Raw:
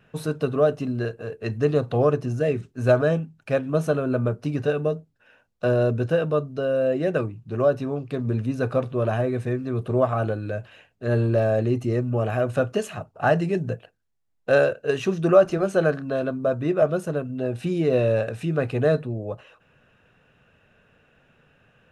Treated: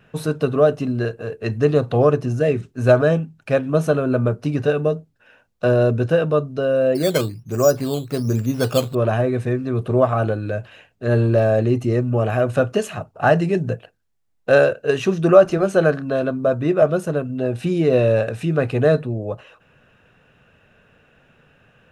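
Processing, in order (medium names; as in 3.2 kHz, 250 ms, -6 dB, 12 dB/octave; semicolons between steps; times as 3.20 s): 6.95–8.95 s: decimation with a swept rate 9×, swing 60% 1.2 Hz; trim +4.5 dB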